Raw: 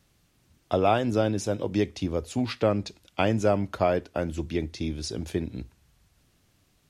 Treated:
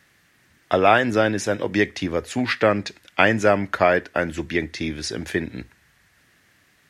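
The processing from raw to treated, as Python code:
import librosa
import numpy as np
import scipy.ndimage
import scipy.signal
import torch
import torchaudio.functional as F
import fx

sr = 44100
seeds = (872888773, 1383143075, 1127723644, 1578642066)

y = fx.highpass(x, sr, hz=170.0, slope=6)
y = fx.peak_eq(y, sr, hz=1800.0, db=15.0, octaves=0.73)
y = y * librosa.db_to_amplitude(5.0)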